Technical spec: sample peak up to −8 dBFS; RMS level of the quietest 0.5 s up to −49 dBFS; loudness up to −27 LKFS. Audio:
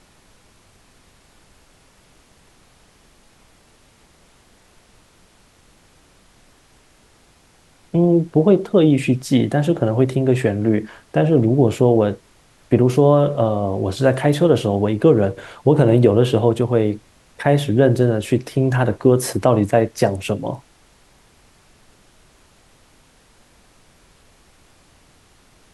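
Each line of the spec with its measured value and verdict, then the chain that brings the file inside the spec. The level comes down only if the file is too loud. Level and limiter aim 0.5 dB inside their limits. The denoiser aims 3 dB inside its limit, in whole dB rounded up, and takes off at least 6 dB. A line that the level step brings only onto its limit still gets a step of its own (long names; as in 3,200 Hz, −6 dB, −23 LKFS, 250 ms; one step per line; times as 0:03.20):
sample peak −2.0 dBFS: out of spec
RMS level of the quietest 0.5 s −54 dBFS: in spec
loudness −17.0 LKFS: out of spec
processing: level −10.5 dB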